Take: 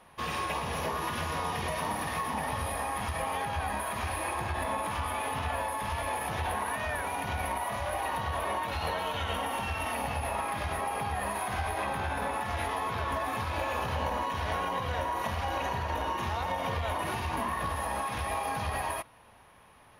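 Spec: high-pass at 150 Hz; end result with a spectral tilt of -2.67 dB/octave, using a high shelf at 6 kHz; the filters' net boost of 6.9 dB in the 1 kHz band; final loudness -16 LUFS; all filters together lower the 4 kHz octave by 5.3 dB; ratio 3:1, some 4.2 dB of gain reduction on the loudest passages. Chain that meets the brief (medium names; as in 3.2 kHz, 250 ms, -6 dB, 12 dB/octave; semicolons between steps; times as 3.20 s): high-pass 150 Hz; peaking EQ 1 kHz +8.5 dB; peaking EQ 4 kHz -6 dB; treble shelf 6 kHz -7.5 dB; compression 3:1, threshold -28 dBFS; trim +15 dB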